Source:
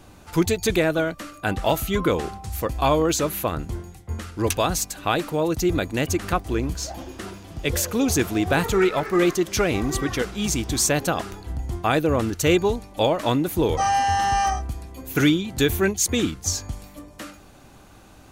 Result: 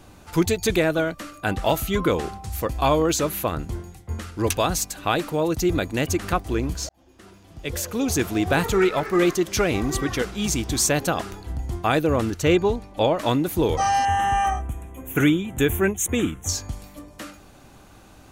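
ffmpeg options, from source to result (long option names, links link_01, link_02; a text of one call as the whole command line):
ffmpeg -i in.wav -filter_complex "[0:a]asettb=1/sr,asplit=3[link_01][link_02][link_03];[link_01]atrim=end=12.394[link_04];[link_02]atrim=start=12.39:end=13.17,asetpts=PTS-STARTPTS,afade=type=in:duration=0.004:curve=qsin,afade=type=out:start_time=0.776:duration=0.004:curve=qsin,aemphasis=mode=reproduction:type=cd[link_05];[link_03]atrim=start=13.166[link_06];[link_04][link_05]acrossfade=duration=0.004:curve1=hsin:curve2=qsin[link_07];[link_07][link_06]acrossfade=duration=0.004:curve1=qsin:curve2=hsin,asettb=1/sr,asplit=3[link_08][link_09][link_10];[link_08]atrim=end=14.054[link_11];[link_09]atrim=start=14.05:end=16.49,asetpts=PTS-STARTPTS,afade=type=in:duration=0.004:curve=qsin,afade=type=out:start_time=2.436:duration=0.004:curve=qsin,asuperstop=centerf=4700:order=4:qfactor=1.3[link_12];[link_10]atrim=start=16.486[link_13];[link_11][link_12]acrossfade=duration=0.004:curve1=hsin:curve2=qsin[link_14];[link_14][link_13]acrossfade=duration=0.004:curve1=qsin:curve2=hsin,asplit=2[link_15][link_16];[link_15]atrim=end=6.89,asetpts=PTS-STARTPTS,afade=type=out:start_time=6.886:duration=0.004:curve=hsin[link_17];[link_16]atrim=start=6.89,asetpts=PTS-STARTPTS,afade=type=in:duration=1.53[link_18];[link_17][link_18]concat=n=2:v=0:a=1" out.wav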